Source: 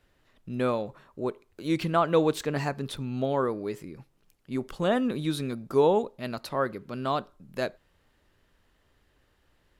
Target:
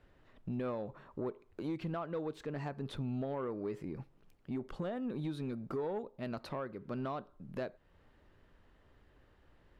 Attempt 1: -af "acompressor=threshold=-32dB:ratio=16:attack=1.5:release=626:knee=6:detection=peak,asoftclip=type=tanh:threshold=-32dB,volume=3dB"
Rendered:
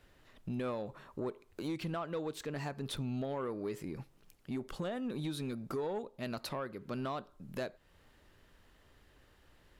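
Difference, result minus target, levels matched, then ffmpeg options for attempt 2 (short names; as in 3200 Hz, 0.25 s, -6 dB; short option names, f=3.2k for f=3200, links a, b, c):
2000 Hz band +3.0 dB
-af "acompressor=threshold=-32dB:ratio=16:attack=1.5:release=626:knee=6:detection=peak,lowpass=f=1.5k:p=1,asoftclip=type=tanh:threshold=-32dB,volume=3dB"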